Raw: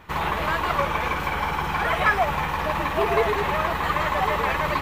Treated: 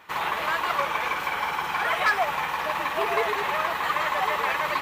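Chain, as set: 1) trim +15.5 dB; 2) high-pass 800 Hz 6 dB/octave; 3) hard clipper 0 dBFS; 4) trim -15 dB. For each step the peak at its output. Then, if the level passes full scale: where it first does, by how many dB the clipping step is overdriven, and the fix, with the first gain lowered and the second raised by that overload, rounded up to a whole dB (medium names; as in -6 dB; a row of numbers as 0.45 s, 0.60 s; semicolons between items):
+9.0 dBFS, +6.5 dBFS, 0.0 dBFS, -15.0 dBFS; step 1, 6.5 dB; step 1 +8.5 dB, step 4 -8 dB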